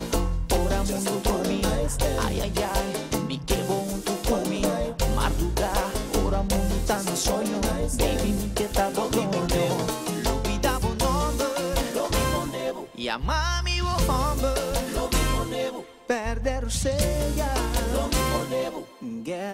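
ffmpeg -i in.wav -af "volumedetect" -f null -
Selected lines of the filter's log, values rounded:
mean_volume: -25.0 dB
max_volume: -11.6 dB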